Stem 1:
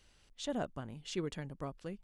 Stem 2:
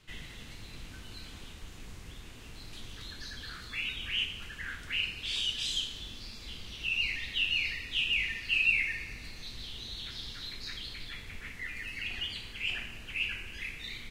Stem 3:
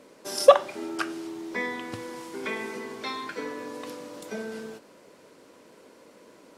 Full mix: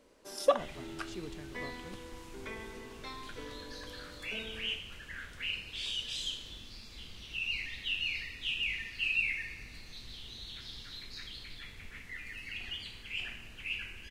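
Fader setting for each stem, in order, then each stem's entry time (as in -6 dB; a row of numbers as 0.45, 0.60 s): -7.0, -4.5, -11.5 dB; 0.00, 0.50, 0.00 s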